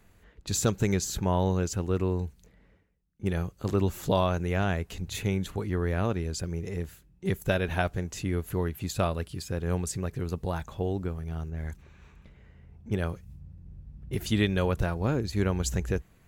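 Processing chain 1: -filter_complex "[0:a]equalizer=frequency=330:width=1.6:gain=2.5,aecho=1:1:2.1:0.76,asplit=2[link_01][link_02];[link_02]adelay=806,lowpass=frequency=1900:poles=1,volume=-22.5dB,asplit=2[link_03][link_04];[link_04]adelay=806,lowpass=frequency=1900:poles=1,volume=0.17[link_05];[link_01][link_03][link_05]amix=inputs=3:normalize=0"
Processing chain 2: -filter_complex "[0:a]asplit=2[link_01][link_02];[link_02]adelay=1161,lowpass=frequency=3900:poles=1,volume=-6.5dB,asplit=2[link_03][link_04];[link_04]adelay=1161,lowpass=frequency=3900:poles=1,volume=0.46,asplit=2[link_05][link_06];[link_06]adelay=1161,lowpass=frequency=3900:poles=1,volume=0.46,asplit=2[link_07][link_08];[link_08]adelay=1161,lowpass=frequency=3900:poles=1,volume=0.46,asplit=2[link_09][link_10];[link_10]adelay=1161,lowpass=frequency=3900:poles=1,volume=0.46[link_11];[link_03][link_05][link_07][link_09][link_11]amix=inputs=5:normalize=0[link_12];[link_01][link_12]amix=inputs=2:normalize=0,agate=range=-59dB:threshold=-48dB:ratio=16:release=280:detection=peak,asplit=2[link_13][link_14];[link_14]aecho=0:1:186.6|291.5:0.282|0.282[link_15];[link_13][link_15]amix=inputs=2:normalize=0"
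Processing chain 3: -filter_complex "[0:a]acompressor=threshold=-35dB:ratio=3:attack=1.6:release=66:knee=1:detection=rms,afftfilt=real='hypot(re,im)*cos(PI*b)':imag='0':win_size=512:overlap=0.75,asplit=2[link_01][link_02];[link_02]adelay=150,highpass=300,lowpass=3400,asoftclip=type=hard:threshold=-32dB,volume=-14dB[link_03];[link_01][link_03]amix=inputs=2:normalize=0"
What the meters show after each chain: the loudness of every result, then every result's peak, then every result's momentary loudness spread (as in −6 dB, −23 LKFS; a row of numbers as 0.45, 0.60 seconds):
−27.5, −29.0, −45.0 LKFS; −9.0, −10.0, −23.5 dBFS; 11, 10, 14 LU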